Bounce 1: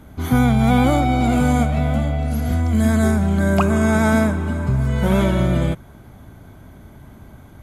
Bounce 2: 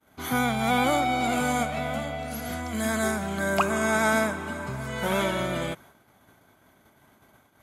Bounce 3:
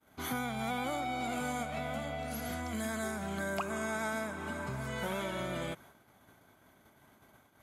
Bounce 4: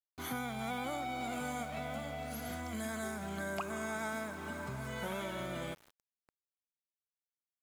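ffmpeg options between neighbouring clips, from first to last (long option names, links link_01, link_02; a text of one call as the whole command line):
ffmpeg -i in.wav -af "agate=range=-33dB:threshold=-35dB:ratio=3:detection=peak,highpass=frequency=840:poles=1" out.wav
ffmpeg -i in.wav -af "acompressor=threshold=-31dB:ratio=3,volume=-3.5dB" out.wav
ffmpeg -i in.wav -filter_complex "[0:a]asplit=2[link_01][link_02];[link_02]adelay=310,highpass=300,lowpass=3400,asoftclip=type=hard:threshold=-32.5dB,volume=-21dB[link_03];[link_01][link_03]amix=inputs=2:normalize=0,aeval=exprs='val(0)*gte(abs(val(0)),0.00355)':channel_layout=same,volume=-3dB" out.wav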